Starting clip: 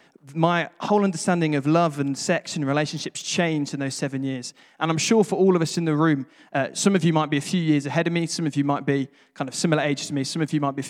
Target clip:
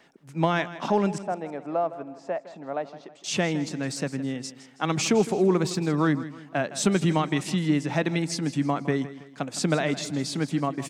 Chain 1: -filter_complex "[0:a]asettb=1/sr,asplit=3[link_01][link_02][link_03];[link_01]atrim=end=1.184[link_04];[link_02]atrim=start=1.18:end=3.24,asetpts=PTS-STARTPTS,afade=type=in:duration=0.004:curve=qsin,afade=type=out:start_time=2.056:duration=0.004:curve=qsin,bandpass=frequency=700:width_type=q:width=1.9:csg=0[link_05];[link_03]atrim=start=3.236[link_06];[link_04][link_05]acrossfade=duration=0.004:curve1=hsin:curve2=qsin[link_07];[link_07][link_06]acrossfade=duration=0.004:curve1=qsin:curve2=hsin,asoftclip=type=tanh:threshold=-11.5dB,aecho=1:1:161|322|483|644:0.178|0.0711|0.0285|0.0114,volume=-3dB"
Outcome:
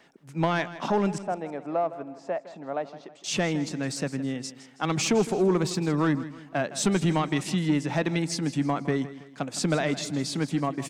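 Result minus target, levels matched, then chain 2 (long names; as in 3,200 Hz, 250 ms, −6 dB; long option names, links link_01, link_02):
soft clipping: distortion +13 dB
-filter_complex "[0:a]asettb=1/sr,asplit=3[link_01][link_02][link_03];[link_01]atrim=end=1.184[link_04];[link_02]atrim=start=1.18:end=3.24,asetpts=PTS-STARTPTS,afade=type=in:duration=0.004:curve=qsin,afade=type=out:start_time=2.056:duration=0.004:curve=qsin,bandpass=frequency=700:width_type=q:width=1.9:csg=0[link_05];[link_03]atrim=start=3.236[link_06];[link_04][link_05]acrossfade=duration=0.004:curve1=hsin:curve2=qsin[link_07];[link_07][link_06]acrossfade=duration=0.004:curve1=qsin:curve2=hsin,asoftclip=type=tanh:threshold=-3dB,aecho=1:1:161|322|483|644:0.178|0.0711|0.0285|0.0114,volume=-3dB"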